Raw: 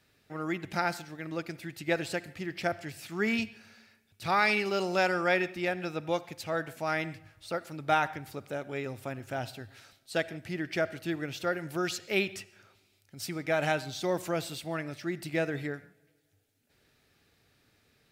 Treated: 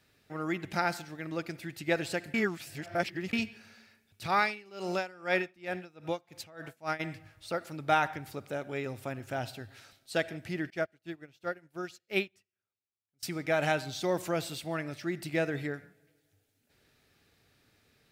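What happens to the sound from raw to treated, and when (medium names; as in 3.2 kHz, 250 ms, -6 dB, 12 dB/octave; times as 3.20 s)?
2.34–3.33 s: reverse
4.26–6.99 s: logarithmic tremolo 1.6 Hz -> 4.4 Hz, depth 23 dB
10.70–13.23 s: upward expansion 2.5:1, over -48 dBFS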